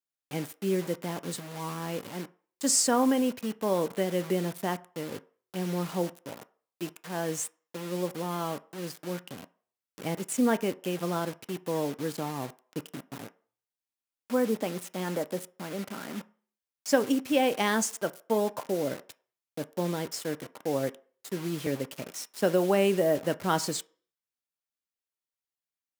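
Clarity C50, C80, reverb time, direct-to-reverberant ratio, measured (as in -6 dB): 21.5 dB, 25.0 dB, 0.45 s, 11.0 dB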